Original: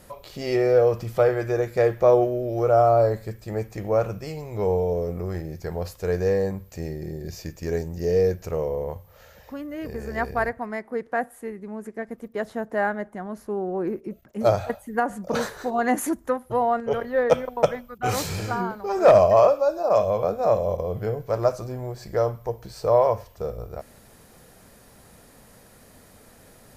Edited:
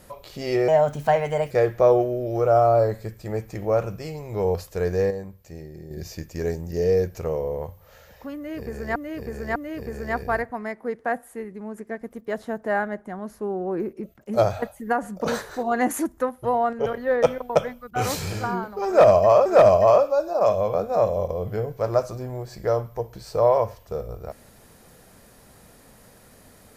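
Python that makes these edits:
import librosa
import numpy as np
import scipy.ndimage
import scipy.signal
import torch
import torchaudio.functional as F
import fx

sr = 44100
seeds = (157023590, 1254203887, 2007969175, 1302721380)

y = fx.edit(x, sr, fx.speed_span(start_s=0.68, length_s=1.05, speed=1.27),
    fx.cut(start_s=4.77, length_s=1.05),
    fx.clip_gain(start_s=6.38, length_s=0.8, db=-7.5),
    fx.repeat(start_s=9.63, length_s=0.6, count=3),
    fx.repeat(start_s=18.95, length_s=0.58, count=2), tone=tone)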